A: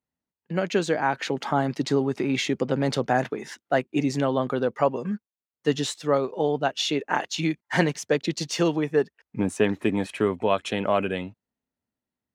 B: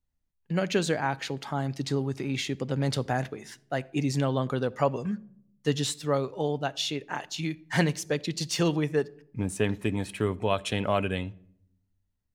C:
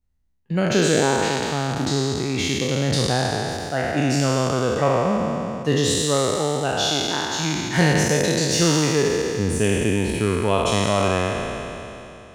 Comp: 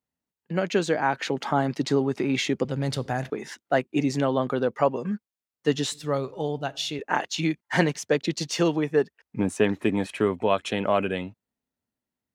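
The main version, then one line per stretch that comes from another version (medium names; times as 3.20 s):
A
2.65–3.30 s: from B
5.92–6.99 s: from B
not used: C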